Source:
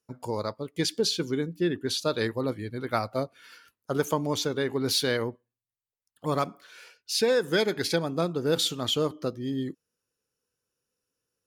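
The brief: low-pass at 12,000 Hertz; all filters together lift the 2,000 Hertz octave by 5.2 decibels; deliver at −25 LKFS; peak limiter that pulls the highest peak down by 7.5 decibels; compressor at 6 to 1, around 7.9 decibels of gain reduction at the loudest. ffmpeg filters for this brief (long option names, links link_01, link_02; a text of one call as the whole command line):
ffmpeg -i in.wav -af "lowpass=12000,equalizer=frequency=2000:width_type=o:gain=7,acompressor=threshold=-27dB:ratio=6,volume=8.5dB,alimiter=limit=-13.5dB:level=0:latency=1" out.wav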